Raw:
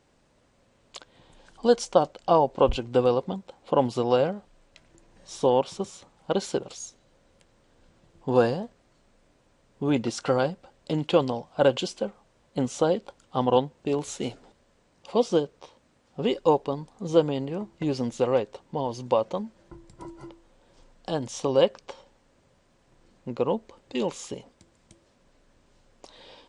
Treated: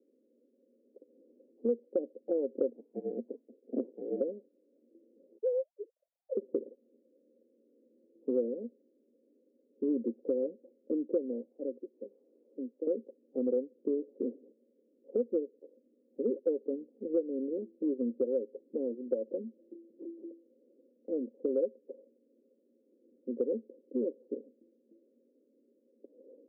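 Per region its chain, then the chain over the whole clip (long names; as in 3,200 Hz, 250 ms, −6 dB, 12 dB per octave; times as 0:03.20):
0:02.69–0:04.21: parametric band 660 Hz +8 dB 1.4 octaves + sample-rate reduction 1,500 Hz + voice inversion scrambler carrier 2,700 Hz
0:05.38–0:06.37: three sine waves on the formant tracks + high-pass filter 630 Hz
0:11.51–0:12.87: spike at every zero crossing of −15 dBFS + high-pass filter 270 Hz 24 dB per octave + parametric band 600 Hz −14.5 dB 2.4 octaves
whole clip: Chebyshev band-pass filter 230–530 Hz, order 4; downward compressor 4 to 1, threshold −28 dBFS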